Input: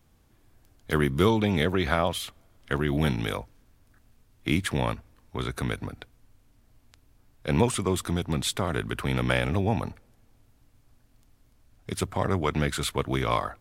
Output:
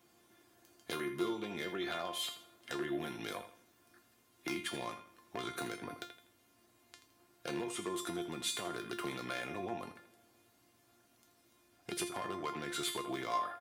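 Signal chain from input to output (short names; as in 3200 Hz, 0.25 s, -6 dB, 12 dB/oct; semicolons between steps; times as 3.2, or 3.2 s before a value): compressor 12:1, threshold -34 dBFS, peak gain reduction 19 dB; on a send: feedback echo 82 ms, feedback 33%, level -12 dB; on the sum: wavefolder -28 dBFS; HPF 230 Hz 12 dB/oct; resonator 350 Hz, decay 0.31 s, harmonics all, mix 90%; gain +15.5 dB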